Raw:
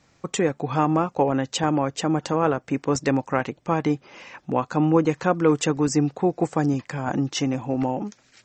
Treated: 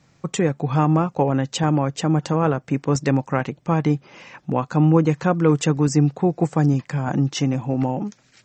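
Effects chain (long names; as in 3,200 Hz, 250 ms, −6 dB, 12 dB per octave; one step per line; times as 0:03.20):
parametric band 150 Hz +8.5 dB 0.86 octaves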